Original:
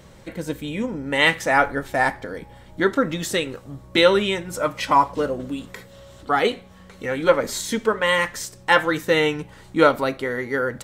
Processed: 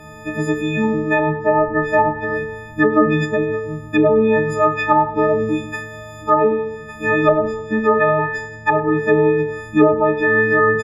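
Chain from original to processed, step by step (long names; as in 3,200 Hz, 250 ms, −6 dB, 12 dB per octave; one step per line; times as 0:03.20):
every partial snapped to a pitch grid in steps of 6 semitones
treble cut that deepens with the level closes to 490 Hz, closed at −10.5 dBFS
in parallel at +1 dB: brickwall limiter −15 dBFS, peak gain reduction 10 dB
on the sum: flat-topped bell 6,700 Hz −15.5 dB 2.4 octaves
on a send: repeating echo 100 ms, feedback 47%, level −21.5 dB
on the sum: feedback delay network reverb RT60 0.96 s, low-frequency decay 0.85×, high-frequency decay 0.3×, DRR 7 dB
level −1 dB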